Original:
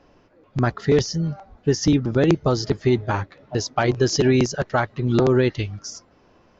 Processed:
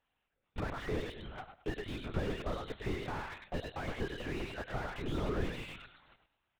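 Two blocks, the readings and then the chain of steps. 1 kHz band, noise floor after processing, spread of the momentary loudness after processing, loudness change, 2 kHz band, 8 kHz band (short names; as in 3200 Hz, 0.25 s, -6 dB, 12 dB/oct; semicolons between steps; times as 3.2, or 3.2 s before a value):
-15.5 dB, -83 dBFS, 8 LU, -18.5 dB, -13.0 dB, n/a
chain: differentiator; gate -60 dBFS, range -25 dB; compressor 4:1, threshold -47 dBFS, peak gain reduction 19.5 dB; feedback echo 0.103 s, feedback 25%, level -8.5 dB; LPC vocoder at 8 kHz whisper; slew limiter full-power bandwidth 1.7 Hz; gain +17 dB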